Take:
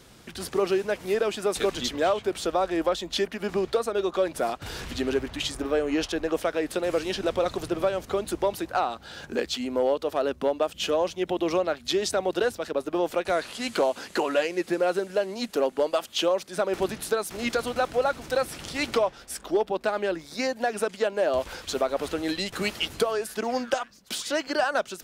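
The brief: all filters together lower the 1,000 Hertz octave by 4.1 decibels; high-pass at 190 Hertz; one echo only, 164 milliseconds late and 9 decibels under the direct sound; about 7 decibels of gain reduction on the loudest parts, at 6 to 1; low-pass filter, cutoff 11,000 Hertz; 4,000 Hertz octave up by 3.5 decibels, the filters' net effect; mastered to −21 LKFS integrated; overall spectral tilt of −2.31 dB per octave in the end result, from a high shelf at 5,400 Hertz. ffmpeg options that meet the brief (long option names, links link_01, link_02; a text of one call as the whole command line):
ffmpeg -i in.wav -af "highpass=190,lowpass=11000,equalizer=frequency=1000:width_type=o:gain=-6.5,equalizer=frequency=4000:width_type=o:gain=3.5,highshelf=frequency=5400:gain=3.5,acompressor=threshold=-28dB:ratio=6,aecho=1:1:164:0.355,volume=11dB" out.wav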